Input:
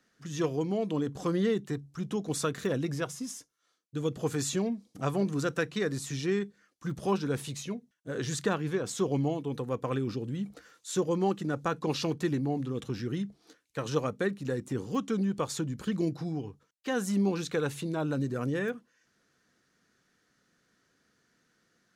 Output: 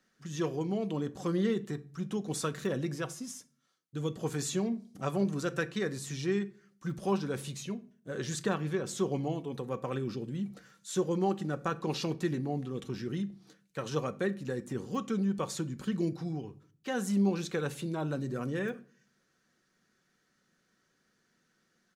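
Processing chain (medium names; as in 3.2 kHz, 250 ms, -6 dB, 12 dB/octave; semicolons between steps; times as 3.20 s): comb 5.3 ms, depth 31%; on a send: reverberation RT60 0.45 s, pre-delay 4 ms, DRR 13.5 dB; on the sum: trim -3 dB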